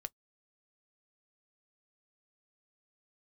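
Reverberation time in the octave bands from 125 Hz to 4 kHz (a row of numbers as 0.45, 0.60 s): 0.15 s, 0.15 s, 0.10 s, 0.10 s, 0.10 s, n/a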